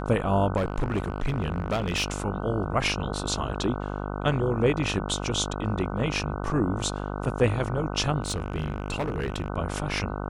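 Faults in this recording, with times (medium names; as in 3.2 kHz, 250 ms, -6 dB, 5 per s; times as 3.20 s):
buzz 50 Hz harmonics 30 -32 dBFS
0.56–2.22 s: clipped -21.5 dBFS
8.22–9.50 s: clipped -23.5 dBFS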